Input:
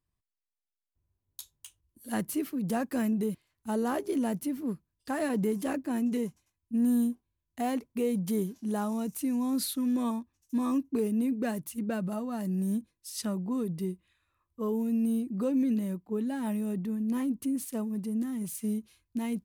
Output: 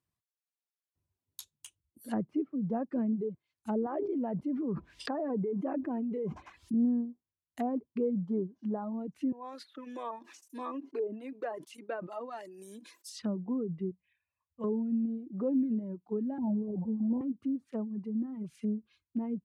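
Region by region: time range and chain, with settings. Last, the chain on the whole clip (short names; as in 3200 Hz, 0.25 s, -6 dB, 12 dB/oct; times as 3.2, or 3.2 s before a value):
3.86–6.74 bell 110 Hz -14 dB 2.2 oct + fast leveller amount 100%
9.32–13.09 HPF 370 Hz 24 dB/oct + transient shaper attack -1 dB, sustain -7 dB + sustainer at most 64 dB/s
13.91–14.64 LPF 4400 Hz + fixed phaser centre 1300 Hz, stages 6
16.38–17.21 delta modulation 16 kbps, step -34 dBFS + steep low-pass 980 Hz 96 dB/oct + bell 120 Hz +4.5 dB 2.5 oct
whole clip: treble ducked by the level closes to 710 Hz, closed at -29 dBFS; reverb removal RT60 1.6 s; HPF 99 Hz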